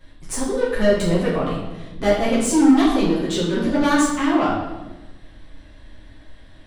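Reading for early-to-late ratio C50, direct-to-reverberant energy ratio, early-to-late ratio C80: 2.0 dB, −9.5 dB, 4.5 dB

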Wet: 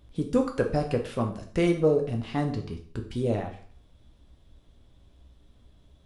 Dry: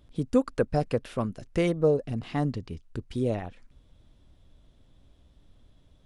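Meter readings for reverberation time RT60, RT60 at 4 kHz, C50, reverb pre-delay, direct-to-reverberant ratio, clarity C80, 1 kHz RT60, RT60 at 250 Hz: 0.50 s, 0.45 s, 9.5 dB, 4 ms, 3.0 dB, 13.5 dB, 0.50 s, 0.50 s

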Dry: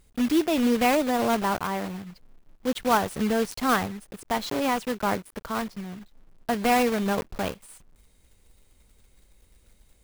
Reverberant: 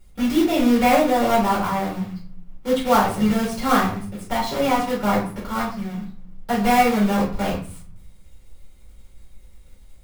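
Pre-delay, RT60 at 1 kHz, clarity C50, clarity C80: 4 ms, 0.45 s, 6.0 dB, 11.0 dB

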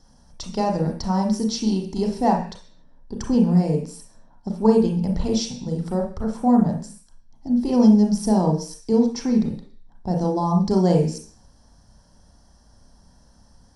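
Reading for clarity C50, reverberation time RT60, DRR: 6.0 dB, 0.45 s, 1.5 dB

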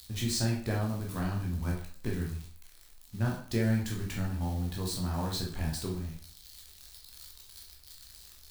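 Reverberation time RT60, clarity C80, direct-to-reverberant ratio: 0.50 s, 10.0 dB, −2.0 dB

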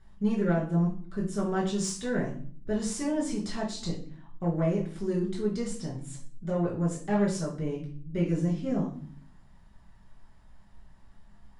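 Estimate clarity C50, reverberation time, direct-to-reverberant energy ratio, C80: 7.0 dB, 0.50 s, −4.5 dB, 12.0 dB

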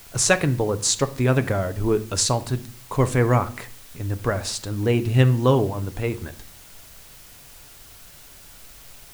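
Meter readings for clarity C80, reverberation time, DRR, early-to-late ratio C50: 21.5 dB, 0.50 s, 11.0 dB, 17.5 dB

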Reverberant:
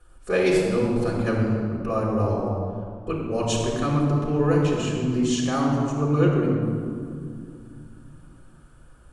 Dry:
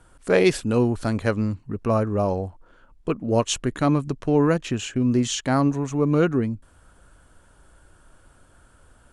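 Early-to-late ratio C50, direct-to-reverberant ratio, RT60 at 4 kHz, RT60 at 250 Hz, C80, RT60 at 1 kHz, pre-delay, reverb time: 1.0 dB, −4.0 dB, 1.3 s, 3.5 s, 2.5 dB, 2.2 s, 4 ms, 2.4 s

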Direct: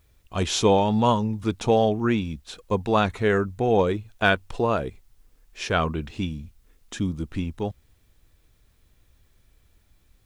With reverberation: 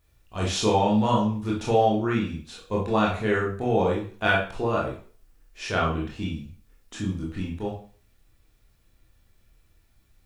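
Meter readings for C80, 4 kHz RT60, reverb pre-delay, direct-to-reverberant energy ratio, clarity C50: 10.5 dB, 0.40 s, 19 ms, −4.0 dB, 4.5 dB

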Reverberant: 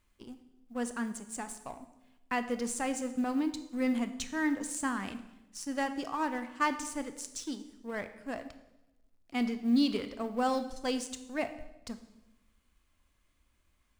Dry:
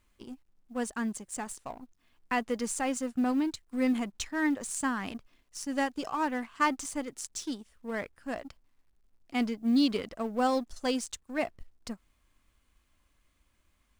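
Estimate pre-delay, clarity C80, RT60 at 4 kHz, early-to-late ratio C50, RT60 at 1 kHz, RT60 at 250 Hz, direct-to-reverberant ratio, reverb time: 21 ms, 14.0 dB, 0.85 s, 12.0 dB, 0.85 s, 1.1 s, 9.5 dB, 0.95 s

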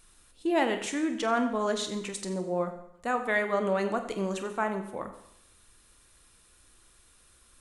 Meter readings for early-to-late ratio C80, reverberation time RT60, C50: 11.5 dB, 0.75 s, 9.5 dB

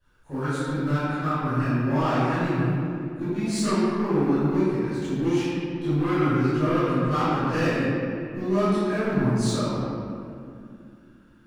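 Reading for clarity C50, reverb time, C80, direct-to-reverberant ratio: −5.5 dB, 2.4 s, −3.0 dB, −17.5 dB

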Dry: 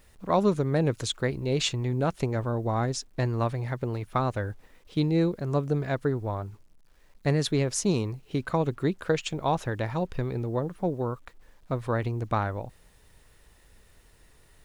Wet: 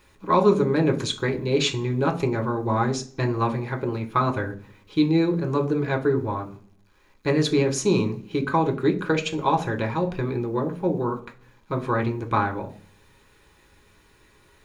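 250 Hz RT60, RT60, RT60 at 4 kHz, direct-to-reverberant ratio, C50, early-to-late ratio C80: 0.70 s, 0.40 s, 0.45 s, 2.0 dB, 14.5 dB, 19.0 dB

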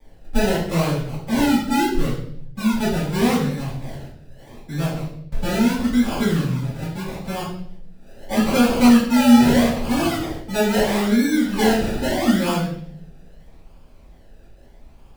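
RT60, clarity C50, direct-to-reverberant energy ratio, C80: 0.65 s, 3.0 dB, −10.5 dB, 7.0 dB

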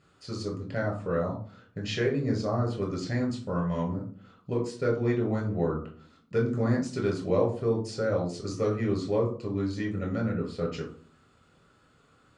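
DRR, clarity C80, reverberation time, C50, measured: 0.0 dB, 13.5 dB, 0.45 s, 8.5 dB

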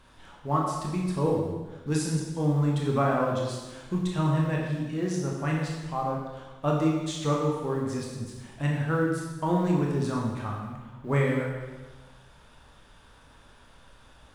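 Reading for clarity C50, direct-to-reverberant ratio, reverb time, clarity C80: 1.5 dB, −2.0 dB, 1.2 s, 3.5 dB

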